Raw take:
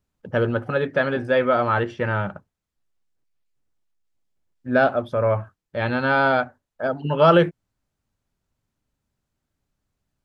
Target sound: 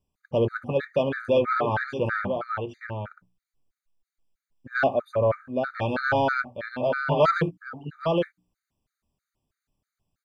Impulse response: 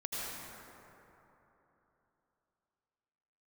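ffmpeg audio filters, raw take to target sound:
-af "bandreject=f=60:t=h:w=6,bandreject=f=120:t=h:w=6,bandreject=f=180:t=h:w=6,bandreject=f=240:t=h:w=6,bandreject=f=300:t=h:w=6,aecho=1:1:814:0.447,asoftclip=type=tanh:threshold=0.316,afftfilt=real='re*gt(sin(2*PI*3.1*pts/sr)*(1-2*mod(floor(b*sr/1024/1200),2)),0)':imag='im*gt(sin(2*PI*3.1*pts/sr)*(1-2*mod(floor(b*sr/1024/1200),2)),0)':win_size=1024:overlap=0.75"

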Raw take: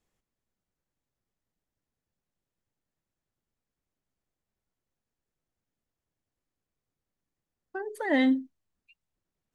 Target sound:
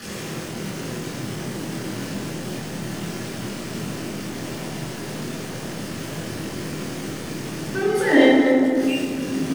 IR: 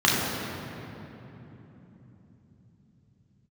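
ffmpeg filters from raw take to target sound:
-filter_complex "[0:a]aeval=exprs='val(0)+0.5*0.0251*sgn(val(0))':c=same,asplit=2[s0][s1];[s1]adelay=25,volume=0.531[s2];[s0][s2]amix=inputs=2:normalize=0[s3];[1:a]atrim=start_sample=2205,asetrate=66150,aresample=44100[s4];[s3][s4]afir=irnorm=-1:irlink=0,volume=0.422"

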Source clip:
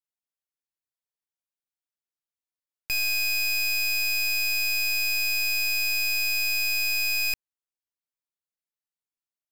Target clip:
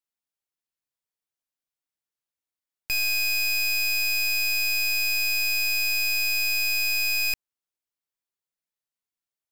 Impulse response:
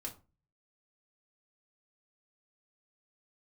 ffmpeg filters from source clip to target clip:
-af "volume=1.12"

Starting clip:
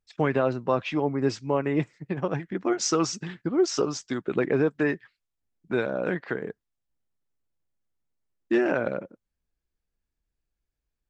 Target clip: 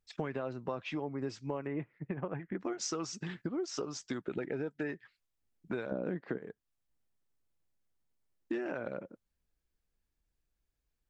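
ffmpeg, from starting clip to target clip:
-filter_complex "[0:a]asettb=1/sr,asplit=3[s0][s1][s2];[s0]atrim=end=1.674[s3];[s1]atrim=start=1.67:end=2.6,asetpts=PTS-STARTPTS,afade=t=in:d=0.004:c=qsin,afade=t=out:st=0.926:d=0.004:c=qsin,lowpass=f=2500:w=0.5412,lowpass=f=2500:w=1.3066[s4];[s2]atrim=start=2.596[s5];[s3][s4]acrossfade=d=0.004:c1=hsin:c2=qsin[s6];[s6][s5]acrossfade=d=0.004:c1=qsin:c2=hsin,asettb=1/sr,asplit=3[s7][s8][s9];[s7]atrim=end=5.914[s10];[s8]atrim=start=5.91:end=6.38,asetpts=PTS-STARTPTS,afade=t=in:d=0.004:c=qsin,afade=t=out:st=0.466:d=0.004:c=qsin,equalizer=f=230:t=o:w=2.8:g=13[s11];[s9]atrim=start=6.376[s12];[s10][s11]acrossfade=d=0.004:c1=hsin:c2=qsin[s13];[s13][s12]acrossfade=d=0.004:c1=qsin:c2=hsin,acompressor=threshold=0.0178:ratio=5,asettb=1/sr,asplit=3[s14][s15][s16];[s14]atrim=end=4.324[s17];[s15]atrim=start=4.32:end=4.89,asetpts=PTS-STARTPTS,afade=t=in:d=0.004:c=qsin,afade=t=out:st=0.566:d=0.004:c=qsin,asuperstop=centerf=1100:order=12:qfactor=4.5[s18];[s16]atrim=start=4.886[s19];[s17][s18]acrossfade=d=0.004:c1=hsin:c2=qsin[s20];[s20][s19]acrossfade=d=0.004:c1=qsin:c2=hsin"

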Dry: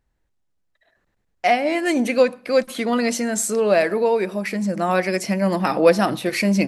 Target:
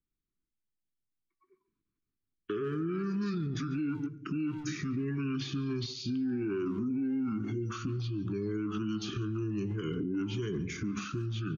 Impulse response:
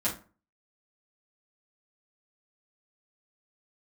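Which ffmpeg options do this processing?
-filter_complex "[0:a]bass=f=250:g=-10,treble=f=4000:g=1,asetrate=25442,aresample=44100,acompressor=threshold=0.0708:ratio=6,afftdn=nr=19:nf=-46,asuperstop=centerf=700:order=8:qfactor=0.88,lowshelf=f=420:g=10,asplit=2[s0][s1];[s1]adelay=19,volume=0.251[s2];[s0][s2]amix=inputs=2:normalize=0,bandreject=f=229.4:t=h:w=4,bandreject=f=458.8:t=h:w=4,bandreject=f=688.2:t=h:w=4,bandreject=f=917.6:t=h:w=4,bandreject=f=1147:t=h:w=4,bandreject=f=1376.4:t=h:w=4,bandreject=f=1605.8:t=h:w=4,bandreject=f=1835.2:t=h:w=4,bandreject=f=2064.6:t=h:w=4,bandreject=f=2294:t=h:w=4,bandreject=f=2523.4:t=h:w=4,bandreject=f=2752.8:t=h:w=4,bandreject=f=2982.2:t=h:w=4,bandreject=f=3211.6:t=h:w=4,bandreject=f=3441:t=h:w=4,bandreject=f=3670.4:t=h:w=4,bandreject=f=3899.8:t=h:w=4,bandreject=f=4129.2:t=h:w=4,bandreject=f=4358.6:t=h:w=4,bandreject=f=4588:t=h:w=4,bandreject=f=4817.4:t=h:w=4,bandreject=f=5046.8:t=h:w=4,asplit=2[s3][s4];[s4]adelay=140,highpass=300,lowpass=3400,asoftclip=type=hard:threshold=0.0596,volume=0.141[s5];[s3][s5]amix=inputs=2:normalize=0,alimiter=limit=0.0631:level=0:latency=1:release=123,acrossover=split=270|700|3700[s6][s7][s8][s9];[s6]acompressor=threshold=0.0141:ratio=4[s10];[s7]acompressor=threshold=0.0126:ratio=4[s11];[s8]acompressor=threshold=0.00447:ratio=4[s12];[s9]acompressor=threshold=0.00355:ratio=4[s13];[s10][s11][s12][s13]amix=inputs=4:normalize=0,volume=1.19"

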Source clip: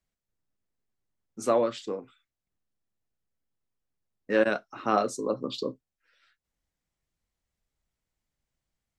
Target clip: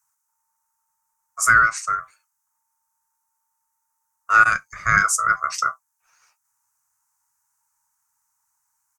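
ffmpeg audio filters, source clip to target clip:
-af "aeval=exprs='val(0)*sin(2*PI*900*n/s)':c=same,firequalizer=gain_entry='entry(140,0);entry(210,-15);entry(300,-24);entry(1300,9);entry(3300,-14);entry(6200,15)':delay=0.05:min_phase=1,volume=2.51"

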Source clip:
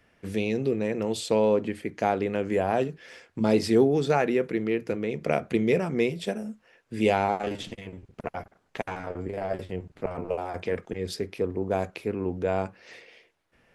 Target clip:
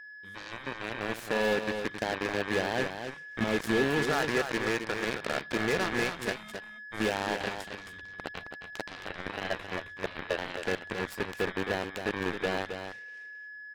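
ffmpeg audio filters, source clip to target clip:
-filter_complex "[0:a]asettb=1/sr,asplit=3[s0][s1][s2];[s0]atrim=end=4.114[s3];[s1]atrim=start=4.11:end=6.36,asetpts=PTS-STARTPTS,afade=t=in:d=0.004:c=qsin,afade=t=out:st=2.246:d=0.004:c=qsin,equalizer=f=1300:t=o:w=1.4:g=14.5[s4];[s2]atrim=start=6.356[s5];[s3][s4]acrossfade=d=0.004:c1=hsin:c2=qsin[s6];[s6][s5]acrossfade=d=0.004:c1=qsin:c2=hsin,acontrast=67,alimiter=limit=0.299:level=0:latency=1:release=254,dynaudnorm=f=390:g=5:m=4.47,asoftclip=type=tanh:threshold=0.473,aeval=exprs='val(0)+0.0891*sin(2*PI*1700*n/s)':c=same,aeval=exprs='0.562*(cos(1*acos(clip(val(0)/0.562,-1,1)))-cos(1*PI/2))+0.0316*(cos(2*acos(clip(val(0)/0.562,-1,1)))-cos(2*PI/2))+0.224*(cos(3*acos(clip(val(0)/0.562,-1,1)))-cos(3*PI/2))+0.00891*(cos(4*acos(clip(val(0)/0.562,-1,1)))-cos(4*PI/2))':c=same,volume=4.22,asoftclip=hard,volume=0.237,aecho=1:1:267:0.422,volume=0.398"

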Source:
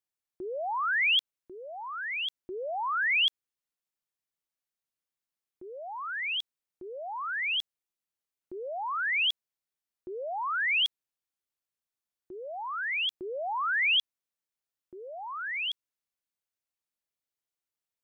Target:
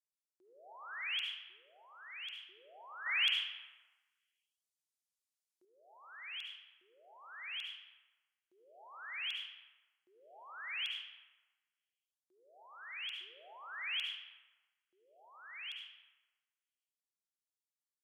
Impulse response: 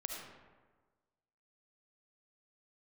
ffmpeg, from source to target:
-filter_complex "[0:a]bandpass=f=7900:t=q:w=0.88:csg=0[s0];[1:a]atrim=start_sample=2205[s1];[s0][s1]afir=irnorm=-1:irlink=0,asettb=1/sr,asplit=3[s2][s3][s4];[s2]atrim=end=3.064[s5];[s3]atrim=start=3.06:end=5.65,asetpts=PTS-STARTPTS,afade=t=in:d=0.004:c=qsin,afade=t=out:st=2.586:d=0.004:c=qsin,acontrast=70[s6];[s4]atrim=start=5.646[s7];[s5][s6]acrossfade=d=0.004:c1=hsin:c2=qsin[s8];[s8][s7]acrossfade=d=0.004:c1=qsin:c2=hsin,volume=0.708"

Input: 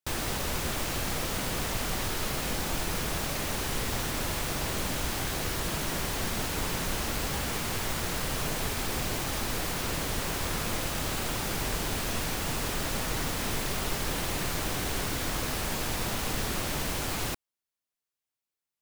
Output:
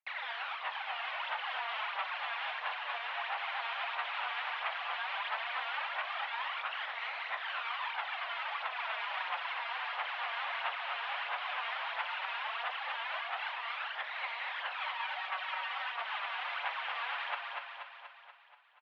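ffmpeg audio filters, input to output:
-filter_complex "[0:a]aphaser=in_gain=1:out_gain=1:delay=4.3:decay=0.71:speed=1.5:type=sinusoidal,asettb=1/sr,asplit=3[s0][s1][s2];[s0]atrim=end=14.804[s3];[s1]atrim=start=14.8:end=15.84,asetpts=PTS-STARTPTS,afade=t=in:d=0.004:c=qsin,afade=t=out:st=1.036:d=0.004:c=qsin,aecho=1:1:5.5:0.81,atrim=end_sample=45864[s4];[s2]atrim=start=15.836[s5];[s3][s4]acrossfade=d=0.004:c1=hsin:c2=qsin[s6];[s6][s5]acrossfade=d=0.004:c1=qsin:c2=hsin,aecho=1:1:240|480|720|960|1200|1440|1680|1920:0.562|0.321|0.183|0.104|0.0594|0.0338|0.0193|0.011,flanger=delay=0.5:depth=8.1:regen=53:speed=0.14:shape=sinusoidal,acompressor=threshold=0.0631:ratio=2.5,highpass=f=550:t=q:w=0.5412,highpass=f=550:t=q:w=1.307,lowpass=f=3000:t=q:w=0.5176,lowpass=f=3000:t=q:w=0.7071,lowpass=f=3000:t=q:w=1.932,afreqshift=220"

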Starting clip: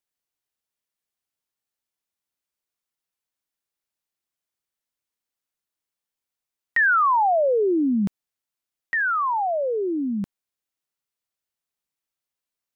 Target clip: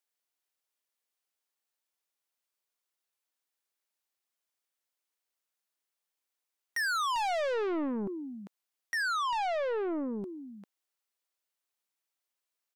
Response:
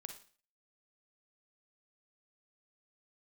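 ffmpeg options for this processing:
-filter_complex "[0:a]highpass=360,asplit=2[s0][s1];[s1]adelay=396.5,volume=0.224,highshelf=f=4000:g=-8.92[s2];[s0][s2]amix=inputs=2:normalize=0,asoftclip=type=tanh:threshold=0.0335"

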